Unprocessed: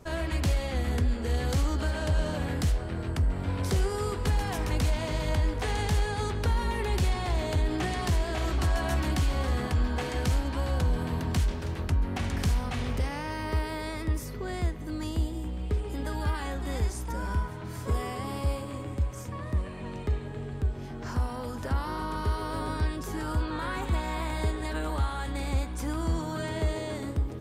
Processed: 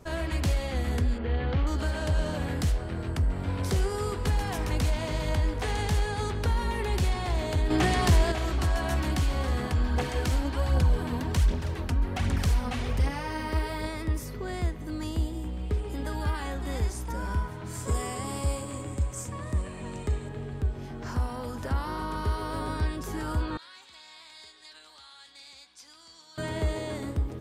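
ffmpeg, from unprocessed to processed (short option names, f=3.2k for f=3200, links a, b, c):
-filter_complex "[0:a]asettb=1/sr,asplit=3[a][b][c];[a]atrim=end=1.184[d];[b]atrim=start=1.18:end=1.67,asetpts=PTS-STARTPTS,afade=t=in:d=0.004:c=qsin,afade=t=out:st=0.486:d=0.004:c=qsin,lowpass=f=3.2k:w=0.5412,lowpass=f=3.2k:w=1.3066[e];[c]atrim=start=1.666[f];[d][e]acrossfade=d=0.004:c1=hsin:c2=qsin[g];[g][f]acrossfade=d=0.004:c1=qsin:c2=hsin,asettb=1/sr,asplit=3[h][i][j];[h]atrim=end=7.704[k];[i]atrim=start=7.7:end=8.32,asetpts=PTS-STARTPTS,afade=t=in:d=0.004:c=qsin,afade=t=out:st=0.616:d=0.004:c=qsin,acontrast=50[l];[j]atrim=start=8.316[m];[k][l]acrossfade=d=0.004:c1=hsin:c2=qsin[n];[n][m]acrossfade=d=0.004:c1=qsin:c2=hsin,asplit=3[o][p][q];[o]afade=t=out:st=9.87:d=0.02[r];[p]aphaser=in_gain=1:out_gain=1:delay=4.3:decay=0.43:speed=1.3:type=triangular,afade=t=in:st=9.87:d=0.02,afade=t=out:st=13.86:d=0.02[s];[q]afade=t=in:st=13.86:d=0.02[t];[r][s][t]amix=inputs=3:normalize=0,asettb=1/sr,asplit=3[u][v][w];[u]atrim=end=17.664[x];[v]atrim=start=17.66:end=20.29,asetpts=PTS-STARTPTS,afade=t=in:d=0.004:c=qsin,afade=t=out:st=2.626:d=0.004:c=qsin,equalizer=f=7.8k:w=1.9:g=13[y];[w]atrim=start=20.286[z];[x][y]acrossfade=d=0.004:c1=hsin:c2=qsin[aa];[aa][z]acrossfade=d=0.004:c1=qsin:c2=hsin,asettb=1/sr,asplit=3[ab][ac][ad];[ab]atrim=end=23.574[ae];[ac]atrim=start=23.57:end=26.38,asetpts=PTS-STARTPTS,afade=t=in:d=0.004:c=qsin,afade=t=out:st=2.806:d=0.004:c=qsin,bandpass=f=4.7k:t=q:w=2.4[af];[ad]atrim=start=26.376[ag];[ae][af]acrossfade=d=0.004:c1=hsin:c2=qsin[ah];[ah][ag]acrossfade=d=0.004:c1=qsin:c2=hsin"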